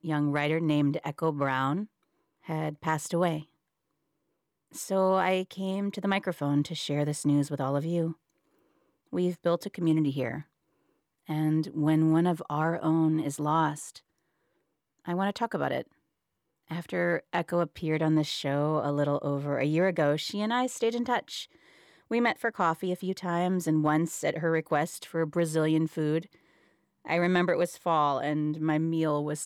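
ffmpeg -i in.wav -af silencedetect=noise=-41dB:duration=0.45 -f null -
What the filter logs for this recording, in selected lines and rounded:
silence_start: 1.85
silence_end: 2.48 | silence_duration: 0.63
silence_start: 3.42
silence_end: 4.75 | silence_duration: 1.32
silence_start: 8.13
silence_end: 9.13 | silence_duration: 1.00
silence_start: 10.42
silence_end: 11.29 | silence_duration: 0.87
silence_start: 13.98
silence_end: 15.06 | silence_duration: 1.09
silence_start: 15.82
silence_end: 16.71 | silence_duration: 0.88
silence_start: 21.45
silence_end: 22.11 | silence_duration: 0.66
silence_start: 26.23
silence_end: 27.05 | silence_duration: 0.82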